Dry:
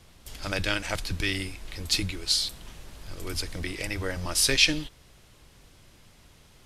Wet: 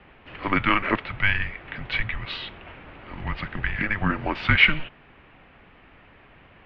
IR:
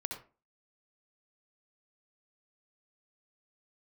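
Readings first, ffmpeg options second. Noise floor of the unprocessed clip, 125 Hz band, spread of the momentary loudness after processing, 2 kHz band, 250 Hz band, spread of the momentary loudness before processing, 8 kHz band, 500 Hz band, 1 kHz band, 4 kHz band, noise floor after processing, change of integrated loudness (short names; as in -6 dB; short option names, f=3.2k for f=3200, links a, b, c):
-56 dBFS, +4.5 dB, 21 LU, +8.5 dB, +5.0 dB, 22 LU, under -35 dB, +0.5 dB, +12.0 dB, -4.0 dB, -53 dBFS, +3.0 dB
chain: -filter_complex "[0:a]asplit=2[a][b];[b]asoftclip=type=hard:threshold=-21.5dB,volume=-5dB[c];[a][c]amix=inputs=2:normalize=0,highpass=f=230:t=q:w=0.5412,highpass=f=230:t=q:w=1.307,lowpass=f=2.9k:t=q:w=0.5176,lowpass=f=2.9k:t=q:w=0.7071,lowpass=f=2.9k:t=q:w=1.932,afreqshift=-300,volume=6dB"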